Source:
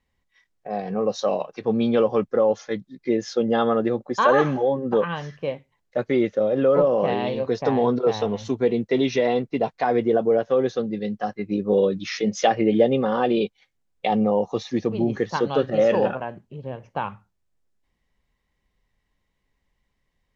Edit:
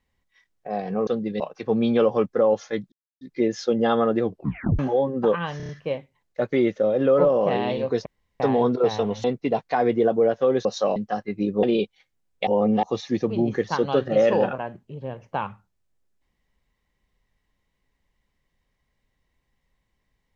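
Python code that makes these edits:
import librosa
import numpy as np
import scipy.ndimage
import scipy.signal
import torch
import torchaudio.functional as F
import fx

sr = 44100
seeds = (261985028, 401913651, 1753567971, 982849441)

y = fx.edit(x, sr, fx.swap(start_s=1.07, length_s=0.31, other_s=10.74, other_length_s=0.33),
    fx.insert_silence(at_s=2.9, length_s=0.29),
    fx.tape_stop(start_s=3.92, length_s=0.56),
    fx.stutter(start_s=5.26, slice_s=0.03, count=5),
    fx.insert_room_tone(at_s=7.63, length_s=0.34),
    fx.cut(start_s=8.47, length_s=0.86),
    fx.cut(start_s=11.74, length_s=1.51),
    fx.reverse_span(start_s=14.09, length_s=0.36), tone=tone)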